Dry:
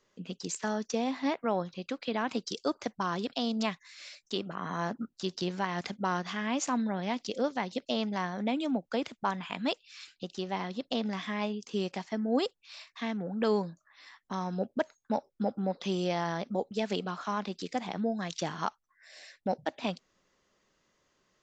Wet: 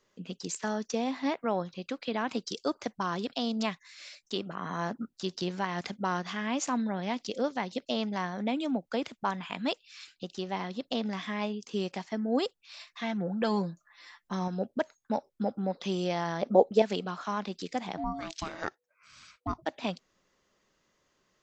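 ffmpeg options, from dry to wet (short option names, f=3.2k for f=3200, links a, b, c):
-filter_complex "[0:a]asettb=1/sr,asplit=3[a][b][c];[a]atrim=end=12.794[d];[b]atrim=start=12.79:end=14.48,asetpts=PTS-STARTPTS,afade=t=in:d=0.004:c=qsin,afade=t=out:st=1.686:d=0.004:c=qsin,aecho=1:1:5.8:0.65,atrim=end_sample=74529[e];[c]atrim=start=14.476[f];[d][e]acrossfade=d=0.004:c1=hsin:c2=qsin[g];[g][f]acrossfade=d=0.004:c1=qsin:c2=hsin,asettb=1/sr,asplit=3[h][i][j];[h]atrim=end=16.424[k];[i]atrim=start=16.42:end=16.82,asetpts=PTS-STARTPTS,afade=t=in:d=0.004:c=qsin,afade=t=out:st=0.396:d=0.004:c=qsin,equalizer=f=560:w=0.61:g=12.5[l];[j]atrim=start=16.816[m];[k][l]acrossfade=d=0.004:c1=hsin:c2=qsin[n];[n][m]acrossfade=d=0.004:c1=qsin:c2=hsin,asplit=3[o][p][q];[o]afade=t=out:st=17.96:d=0.02[r];[p]aeval=exprs='val(0)*sin(2*PI*490*n/s)':c=same,afade=t=in:st=17.96:d=0.02,afade=t=out:st=19.61:d=0.02[s];[q]afade=t=in:st=19.61:d=0.02[t];[r][s][t]amix=inputs=3:normalize=0"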